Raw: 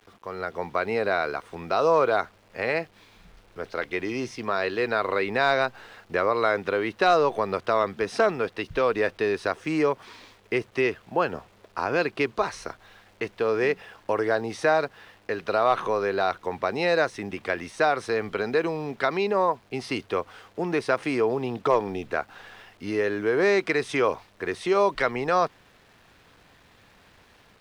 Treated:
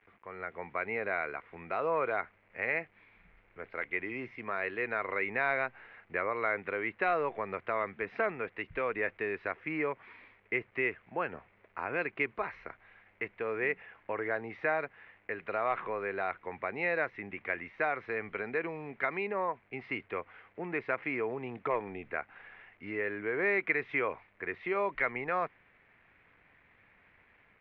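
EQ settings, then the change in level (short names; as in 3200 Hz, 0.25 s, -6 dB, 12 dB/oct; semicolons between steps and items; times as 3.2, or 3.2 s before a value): ladder low-pass 2400 Hz, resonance 65%; air absorption 72 m; 0.0 dB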